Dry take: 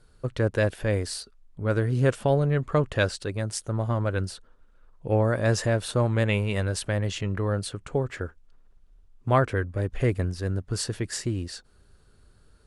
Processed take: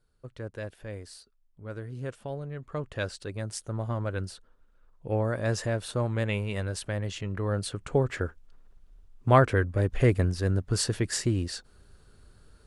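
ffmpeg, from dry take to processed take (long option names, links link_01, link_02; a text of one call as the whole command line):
ffmpeg -i in.wav -af "volume=2dB,afade=type=in:start_time=2.58:duration=0.85:silence=0.354813,afade=type=in:start_time=7.3:duration=0.72:silence=0.446684" out.wav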